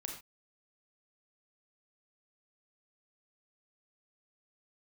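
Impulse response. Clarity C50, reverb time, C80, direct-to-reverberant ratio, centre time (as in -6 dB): 5.0 dB, not exponential, 9.0 dB, 1.5 dB, 28 ms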